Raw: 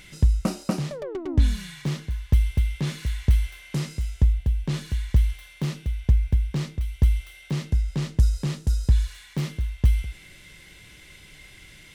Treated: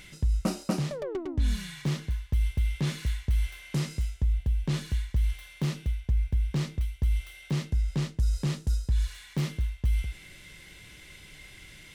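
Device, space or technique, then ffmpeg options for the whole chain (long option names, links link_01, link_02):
compression on the reversed sound: -af "areverse,acompressor=threshold=-21dB:ratio=6,areverse,volume=-1dB"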